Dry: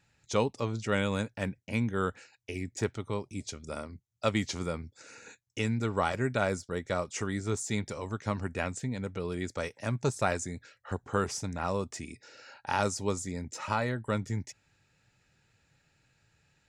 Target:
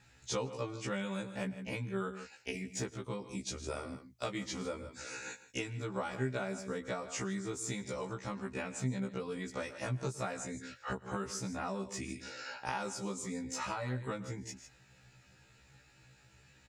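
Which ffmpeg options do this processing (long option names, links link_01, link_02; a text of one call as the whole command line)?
ffmpeg -i in.wav -af "aecho=1:1:112|154:0.112|0.15,acompressor=threshold=-42dB:ratio=5,afftfilt=real='re*1.73*eq(mod(b,3),0)':imag='im*1.73*eq(mod(b,3),0)':win_size=2048:overlap=0.75,volume=9dB" out.wav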